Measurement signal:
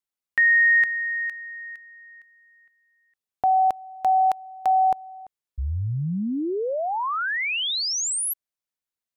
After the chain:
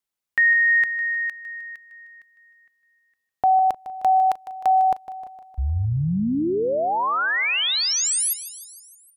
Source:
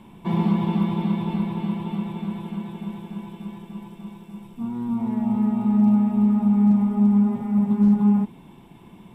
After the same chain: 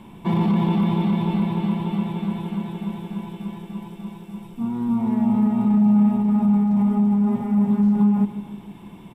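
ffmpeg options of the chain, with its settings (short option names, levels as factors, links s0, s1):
-af "alimiter=limit=0.15:level=0:latency=1:release=10,aecho=1:1:154|308|462|616|770|924:0.2|0.12|0.0718|0.0431|0.0259|0.0155,volume=1.5"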